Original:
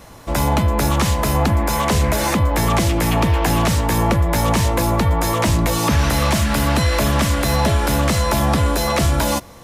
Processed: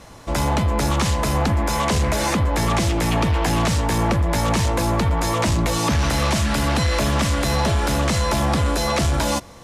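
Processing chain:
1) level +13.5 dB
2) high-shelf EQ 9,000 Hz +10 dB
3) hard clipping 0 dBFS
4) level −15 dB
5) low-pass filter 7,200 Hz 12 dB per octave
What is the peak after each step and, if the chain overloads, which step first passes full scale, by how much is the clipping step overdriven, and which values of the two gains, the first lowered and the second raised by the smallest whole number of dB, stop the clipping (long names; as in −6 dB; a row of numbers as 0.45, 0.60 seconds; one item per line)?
+7.5, +7.5, 0.0, −15.0, −14.0 dBFS
step 1, 7.5 dB
step 1 +5.5 dB, step 4 −7 dB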